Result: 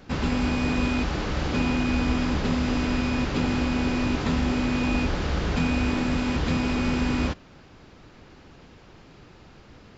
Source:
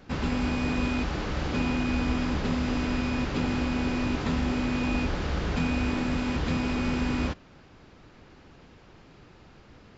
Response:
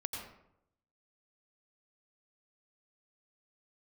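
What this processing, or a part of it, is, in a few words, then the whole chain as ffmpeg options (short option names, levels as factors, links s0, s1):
exciter from parts: -filter_complex "[0:a]asplit=2[s0][s1];[s1]highpass=2400,asoftclip=type=tanh:threshold=0.0126,volume=0.211[s2];[s0][s2]amix=inputs=2:normalize=0,volume=1.41"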